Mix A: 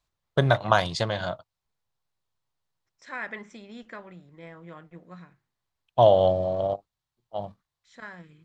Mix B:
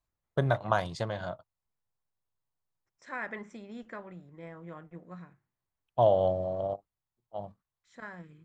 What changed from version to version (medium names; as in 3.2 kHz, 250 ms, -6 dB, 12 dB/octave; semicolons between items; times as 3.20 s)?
first voice -5.5 dB; master: add peaking EQ 3.9 kHz -8 dB 1.9 oct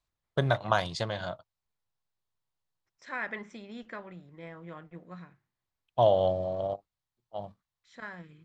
second voice: add distance through air 50 m; master: add peaking EQ 3.9 kHz +8 dB 1.9 oct